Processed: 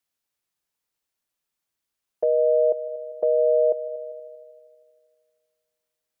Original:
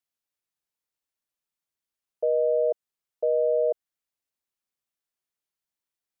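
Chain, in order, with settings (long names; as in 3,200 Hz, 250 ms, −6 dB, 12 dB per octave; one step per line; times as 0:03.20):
on a send: echo machine with several playback heads 79 ms, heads second and third, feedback 51%, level −20 dB
on the sum: dynamic equaliser 460 Hz, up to −3 dB, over −32 dBFS, Q 0.88
level +5.5 dB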